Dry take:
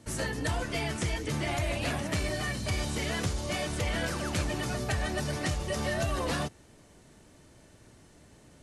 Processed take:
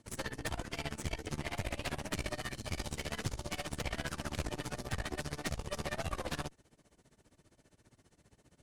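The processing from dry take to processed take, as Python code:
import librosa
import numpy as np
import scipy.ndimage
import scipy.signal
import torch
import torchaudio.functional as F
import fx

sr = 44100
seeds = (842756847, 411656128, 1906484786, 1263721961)

y = x * (1.0 - 0.91 / 2.0 + 0.91 / 2.0 * np.cos(2.0 * np.pi * 15.0 * (np.arange(len(x)) / sr)))
y = fx.cheby_harmonics(y, sr, harmonics=(6,), levels_db=(-12,), full_scale_db=-18.0)
y = y * 10.0 ** (-6.0 / 20.0)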